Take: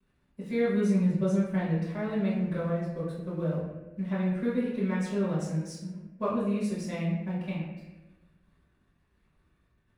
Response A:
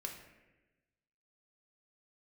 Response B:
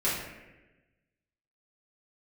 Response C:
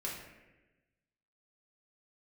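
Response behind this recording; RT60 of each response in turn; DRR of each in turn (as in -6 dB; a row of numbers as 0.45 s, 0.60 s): B; 1.1 s, 1.1 s, 1.1 s; 1.5 dB, -10.5 dB, -4.5 dB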